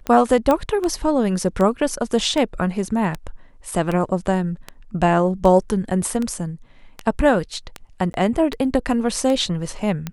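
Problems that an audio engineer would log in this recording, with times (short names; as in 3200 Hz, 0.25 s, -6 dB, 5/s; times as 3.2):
tick 78 rpm -12 dBFS
0.51 pop -7 dBFS
8.13–8.14 gap 11 ms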